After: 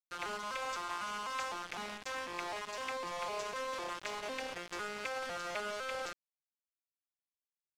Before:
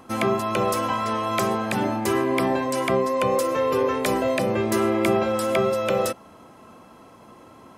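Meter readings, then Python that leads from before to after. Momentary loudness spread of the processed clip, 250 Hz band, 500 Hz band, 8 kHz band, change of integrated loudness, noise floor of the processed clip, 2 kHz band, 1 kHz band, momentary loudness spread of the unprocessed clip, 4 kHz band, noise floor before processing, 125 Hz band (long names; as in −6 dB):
3 LU, −27.5 dB, −21.0 dB, −12.5 dB, −16.5 dB, below −85 dBFS, −9.5 dB, −14.5 dB, 3 LU, −9.0 dB, −49 dBFS, −29.0 dB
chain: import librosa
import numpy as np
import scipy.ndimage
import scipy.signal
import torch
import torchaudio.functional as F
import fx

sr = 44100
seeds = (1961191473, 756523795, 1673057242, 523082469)

y = fx.vocoder_arp(x, sr, chord='minor triad', root=53, every_ms=252)
y = scipy.signal.sosfilt(scipy.signal.butter(2, 1200.0, 'highpass', fs=sr, output='sos'), y)
y = fx.high_shelf(y, sr, hz=4600.0, db=11.5)
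y = fx.quant_dither(y, sr, seeds[0], bits=6, dither='none')
y = fx.air_absorb(y, sr, metres=61.0)
y = y * librosa.db_to_amplitude(-5.0)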